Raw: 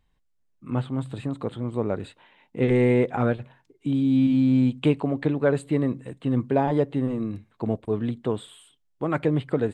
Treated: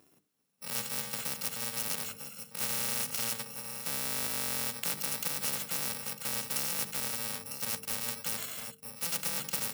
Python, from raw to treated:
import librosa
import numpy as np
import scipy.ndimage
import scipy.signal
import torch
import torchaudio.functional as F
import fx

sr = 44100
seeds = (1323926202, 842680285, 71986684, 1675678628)

y = fx.bit_reversed(x, sr, seeds[0], block=128)
y = scipy.signal.sosfilt(scipy.signal.butter(4, 170.0, 'highpass', fs=sr, output='sos'), y)
y = fx.low_shelf(y, sr, hz=460.0, db=8.5)
y = fx.hum_notches(y, sr, base_hz=50, count=9)
y = y + 10.0 ** (-23.5 / 20.0) * np.pad(y, (int(951 * sr / 1000.0), 0))[:len(y)]
y = fx.spectral_comp(y, sr, ratio=4.0)
y = y * librosa.db_to_amplitude(-7.0)